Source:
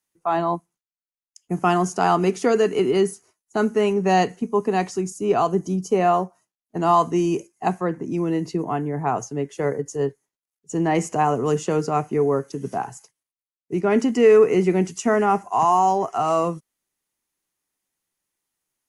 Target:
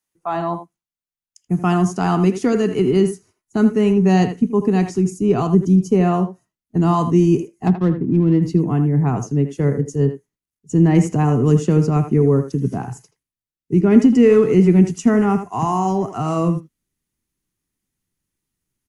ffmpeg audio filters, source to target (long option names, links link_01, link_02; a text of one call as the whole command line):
ffmpeg -i in.wav -filter_complex "[0:a]asplit=3[link_01][link_02][link_03];[link_01]afade=type=out:start_time=7.66:duration=0.02[link_04];[link_02]adynamicsmooth=sensitivity=3:basefreq=1000,afade=type=in:start_time=7.66:duration=0.02,afade=type=out:start_time=8.41:duration=0.02[link_05];[link_03]afade=type=in:start_time=8.41:duration=0.02[link_06];[link_04][link_05][link_06]amix=inputs=3:normalize=0,asubboost=boost=7.5:cutoff=240,asplit=2[link_07][link_08];[link_08]adelay=80,highpass=300,lowpass=3400,asoftclip=type=hard:threshold=-9dB,volume=-9dB[link_09];[link_07][link_09]amix=inputs=2:normalize=0,volume=-1dB" out.wav